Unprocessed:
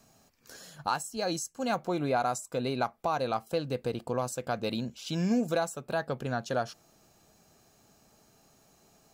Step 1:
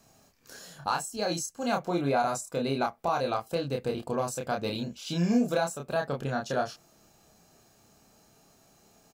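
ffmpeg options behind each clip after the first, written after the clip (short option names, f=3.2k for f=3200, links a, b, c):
-filter_complex "[0:a]asplit=2[a][b];[b]adelay=29,volume=-3dB[c];[a][c]amix=inputs=2:normalize=0"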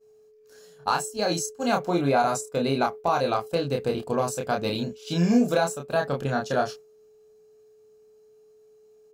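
-af "aeval=exprs='val(0)+0.01*sin(2*PI*430*n/s)':c=same,agate=range=-33dB:threshold=-32dB:ratio=3:detection=peak,volume=4.5dB"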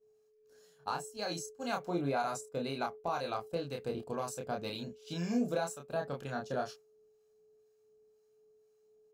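-filter_complex "[0:a]acrossover=split=770[a][b];[a]aeval=exprs='val(0)*(1-0.5/2+0.5/2*cos(2*PI*2*n/s))':c=same[c];[b]aeval=exprs='val(0)*(1-0.5/2-0.5/2*cos(2*PI*2*n/s))':c=same[d];[c][d]amix=inputs=2:normalize=0,volume=-9dB"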